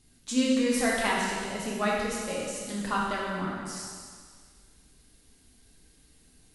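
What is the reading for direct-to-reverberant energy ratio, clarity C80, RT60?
-5.0 dB, 1.5 dB, 1.8 s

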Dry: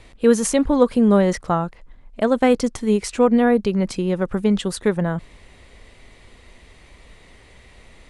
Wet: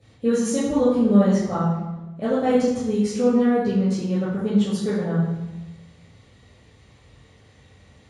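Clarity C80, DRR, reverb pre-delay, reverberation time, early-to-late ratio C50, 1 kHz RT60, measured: 3.5 dB, -10.5 dB, 3 ms, 1.1 s, 0.0 dB, 1.0 s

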